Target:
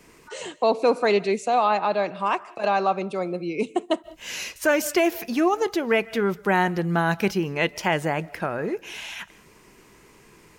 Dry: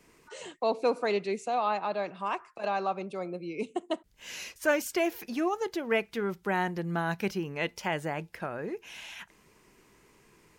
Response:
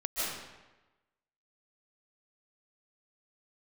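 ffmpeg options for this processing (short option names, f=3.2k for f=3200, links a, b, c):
-filter_complex "[0:a]asplit=2[a][b];[1:a]atrim=start_sample=2205,afade=t=out:st=0.26:d=0.01,atrim=end_sample=11907[c];[b][c]afir=irnorm=-1:irlink=0,volume=-26dB[d];[a][d]amix=inputs=2:normalize=0,alimiter=level_in=17dB:limit=-1dB:release=50:level=0:latency=1,volume=-9dB"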